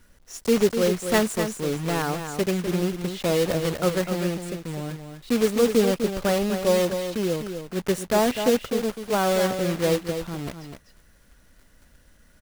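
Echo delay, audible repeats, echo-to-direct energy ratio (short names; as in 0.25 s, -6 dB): 0.251 s, 1, -8.0 dB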